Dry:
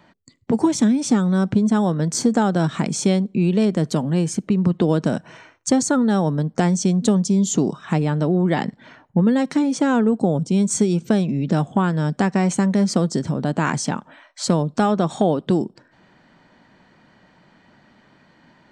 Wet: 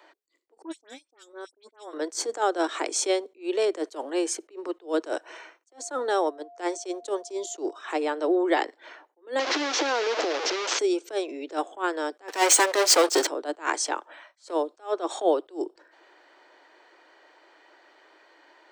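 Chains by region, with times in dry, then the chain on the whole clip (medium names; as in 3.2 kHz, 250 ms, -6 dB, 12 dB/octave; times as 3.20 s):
0.62–1.93 s: gate -16 dBFS, range -41 dB + phase dispersion highs, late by 80 ms, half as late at 2.6 kHz
5.68–7.75 s: gate -20 dBFS, range -12 dB + whistle 700 Hz -46 dBFS
9.39–10.79 s: one-bit delta coder 32 kbps, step -16.5 dBFS + compression, threshold -18 dBFS
12.28–13.27 s: high-pass 820 Hz 6 dB/octave + waveshaping leveller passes 5
whole clip: steep high-pass 320 Hz 72 dB/octave; attacks held to a fixed rise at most 250 dB/s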